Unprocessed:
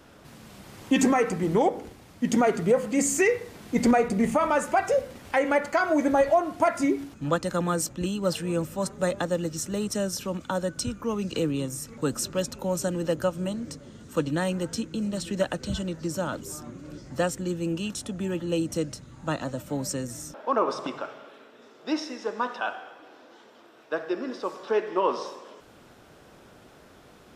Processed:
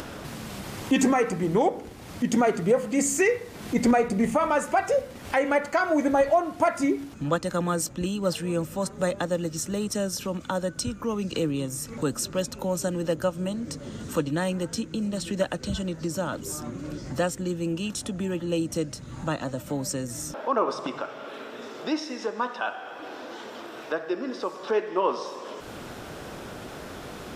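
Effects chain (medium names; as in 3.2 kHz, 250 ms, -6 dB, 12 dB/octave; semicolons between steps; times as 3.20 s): upward compressor, threshold -26 dBFS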